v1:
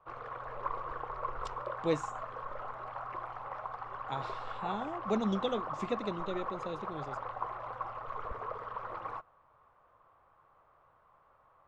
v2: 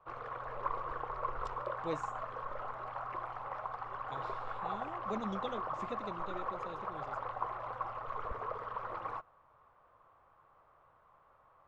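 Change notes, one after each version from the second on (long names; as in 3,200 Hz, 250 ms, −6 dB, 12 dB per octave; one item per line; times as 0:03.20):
speech −8.0 dB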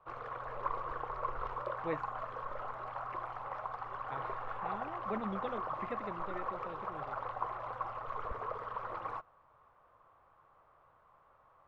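speech: add low-pass with resonance 1,900 Hz, resonance Q 2.8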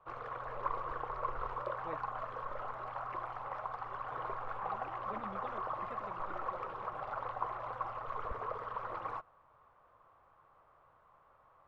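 speech −9.5 dB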